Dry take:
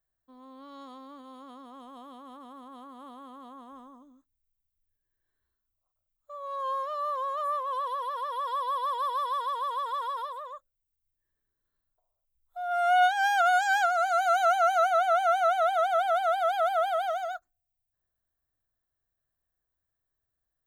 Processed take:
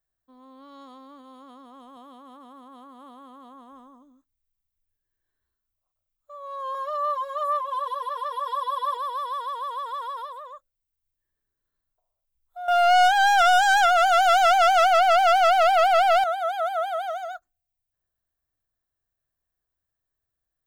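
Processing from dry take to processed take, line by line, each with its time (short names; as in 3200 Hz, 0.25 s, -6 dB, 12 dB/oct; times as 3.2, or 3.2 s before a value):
1.96–3.54 HPF 66 Hz
6.74–8.97 comb 6.8 ms, depth 100%
12.68–16.24 sample leveller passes 3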